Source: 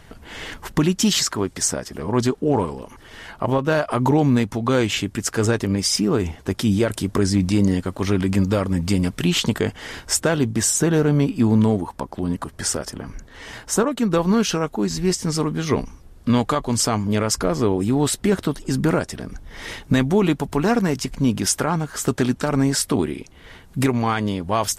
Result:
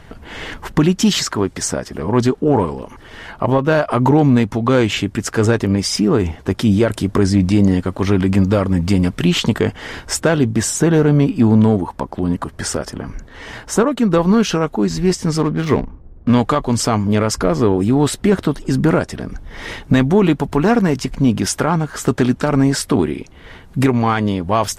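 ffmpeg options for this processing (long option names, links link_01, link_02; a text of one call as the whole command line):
ffmpeg -i in.wav -filter_complex "[0:a]asettb=1/sr,asplit=3[link_01][link_02][link_03];[link_01]atrim=end=15.384[link_04];[link_02]atrim=start=15.38:end=16.34,asetpts=PTS-STARTPTS,afade=type=in:duration=0.004:curve=qsin,afade=type=out:start_time=0.956:duration=0.004:curve=qsin,adynamicsmooth=sensitivity=7:basefreq=680[link_05];[link_03]atrim=start=16.336[link_06];[link_04][link_05]acrossfade=duration=0.004:curve1=hsin:curve2=qsin[link_07];[link_07][link_06]acrossfade=duration=0.004:curve1=qsin:curve2=hsin,highshelf=frequency=4500:gain=-9,acontrast=42" out.wav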